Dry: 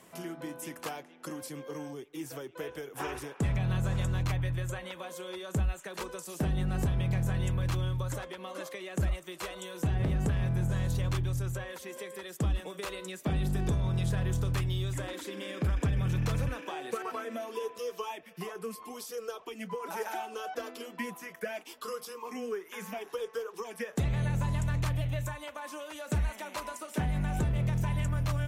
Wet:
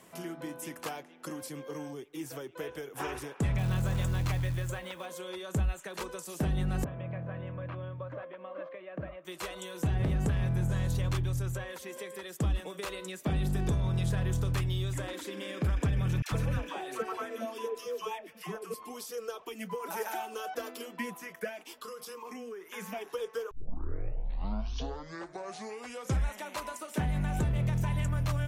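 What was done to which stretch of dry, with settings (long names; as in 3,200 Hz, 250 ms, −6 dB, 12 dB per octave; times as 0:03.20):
0:03.58–0:05.06: log-companded quantiser 6 bits
0:06.84–0:09.25: loudspeaker in its box 200–2,100 Hz, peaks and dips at 220 Hz −8 dB, 390 Hz −9 dB, 590 Hz +5 dB, 840 Hz −9 dB, 1,400 Hz −5 dB, 2,000 Hz −6 dB
0:16.22–0:18.74: all-pass dispersion lows, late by 96 ms, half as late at 700 Hz
0:19.46–0:20.85: high-shelf EQ 12,000 Hz +11.5 dB
0:21.49–0:22.70: downward compressor, threshold −39 dBFS
0:23.51: tape start 2.95 s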